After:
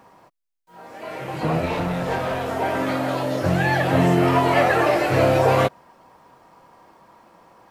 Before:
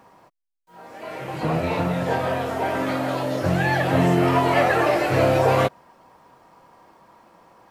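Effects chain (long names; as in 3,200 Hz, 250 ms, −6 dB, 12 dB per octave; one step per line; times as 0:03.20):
0:01.66–0:02.48: asymmetric clip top −26 dBFS
level +1 dB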